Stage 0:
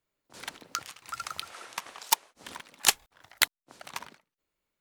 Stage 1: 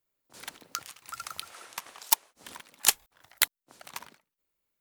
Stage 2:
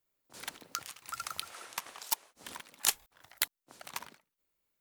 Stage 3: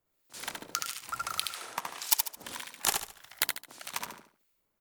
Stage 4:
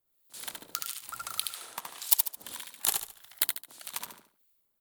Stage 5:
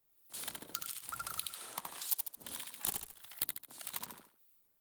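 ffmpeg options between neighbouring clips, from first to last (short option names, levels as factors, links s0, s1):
-af "highshelf=f=10000:g=11.5,volume=0.668"
-af "alimiter=limit=0.266:level=0:latency=1:release=76"
-filter_complex "[0:a]acrossover=split=1500[s0][s1];[s0]aeval=exprs='val(0)*(1-0.7/2+0.7/2*cos(2*PI*1.7*n/s))':c=same[s2];[s1]aeval=exprs='val(0)*(1-0.7/2-0.7/2*cos(2*PI*1.7*n/s))':c=same[s3];[s2][s3]amix=inputs=2:normalize=0,asplit=2[s4][s5];[s5]aecho=0:1:72|144|216|288:0.596|0.203|0.0689|0.0234[s6];[s4][s6]amix=inputs=2:normalize=0,volume=2.37"
-af "aexciter=amount=1.8:drive=4.6:freq=3200,volume=0.531"
-filter_complex "[0:a]acrossover=split=320[s0][s1];[s1]acompressor=threshold=0.00631:ratio=2[s2];[s0][s2]amix=inputs=2:normalize=0,volume=1.41" -ar 48000 -c:a libopus -b:a 24k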